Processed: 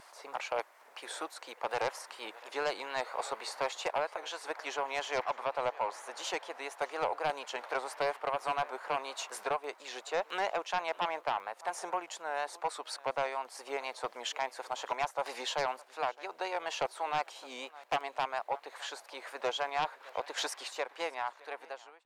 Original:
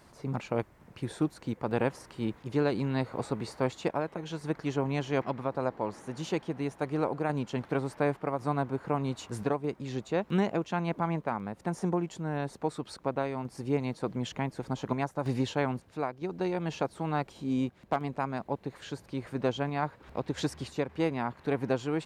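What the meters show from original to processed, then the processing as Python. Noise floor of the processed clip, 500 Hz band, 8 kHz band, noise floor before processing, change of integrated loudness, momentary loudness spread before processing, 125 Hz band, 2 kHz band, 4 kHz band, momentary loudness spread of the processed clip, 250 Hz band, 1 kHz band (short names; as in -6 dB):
-59 dBFS, -4.5 dB, +5.0 dB, -58 dBFS, -3.5 dB, 6 LU, -26.0 dB, +2.0 dB, +5.0 dB, 8 LU, -20.5 dB, +1.5 dB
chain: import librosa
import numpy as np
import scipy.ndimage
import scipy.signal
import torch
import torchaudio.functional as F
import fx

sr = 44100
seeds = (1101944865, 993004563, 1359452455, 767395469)

y = fx.fade_out_tail(x, sr, length_s=1.39)
y = scipy.signal.sosfilt(scipy.signal.butter(4, 620.0, 'highpass', fs=sr, output='sos'), y)
y = y + 10.0 ** (-23.5 / 20.0) * np.pad(y, (int(611 * sr / 1000.0), 0))[:len(y)]
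y = fx.vibrato(y, sr, rate_hz=4.2, depth_cents=60.0)
y = fx.fold_sine(y, sr, drive_db=8, ceiling_db=-17.0)
y = y * 10.0 ** (-7.0 / 20.0)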